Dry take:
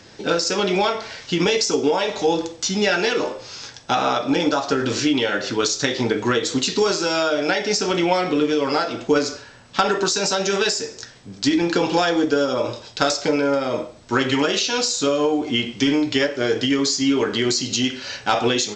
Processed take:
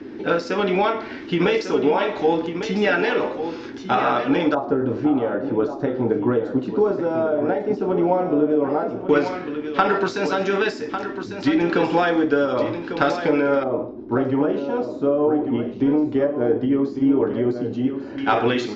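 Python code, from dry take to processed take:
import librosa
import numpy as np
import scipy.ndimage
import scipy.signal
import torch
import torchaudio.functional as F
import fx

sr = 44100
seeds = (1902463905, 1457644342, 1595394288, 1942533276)

y = fx.dmg_noise_band(x, sr, seeds[0], low_hz=230.0, high_hz=390.0, level_db=-36.0)
y = y + 10.0 ** (-9.5 / 20.0) * np.pad(y, (int(1149 * sr / 1000.0), 0))[:len(y)]
y = fx.filter_lfo_lowpass(y, sr, shape='square', hz=0.11, low_hz=770.0, high_hz=2100.0, q=0.94)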